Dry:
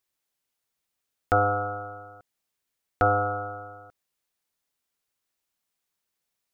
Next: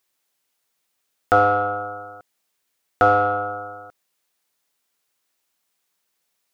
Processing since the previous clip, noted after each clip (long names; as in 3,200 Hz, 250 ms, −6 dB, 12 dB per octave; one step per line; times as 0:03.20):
low-shelf EQ 130 Hz −12 dB
in parallel at −8 dB: soft clipping −25.5 dBFS, distortion −8 dB
on the sum: level +5.5 dB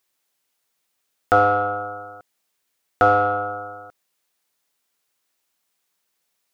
no processing that can be heard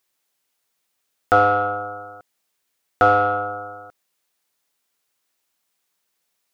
dynamic equaliser 3,000 Hz, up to +4 dB, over −31 dBFS, Q 0.8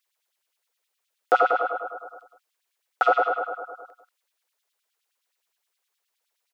auto-filter high-pass sine 9.6 Hz 420–3,500 Hz
slap from a distant wall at 32 metres, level −12 dB
level −6 dB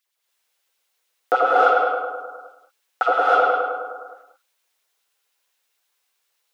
reverb whose tail is shaped and stops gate 340 ms rising, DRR −5.5 dB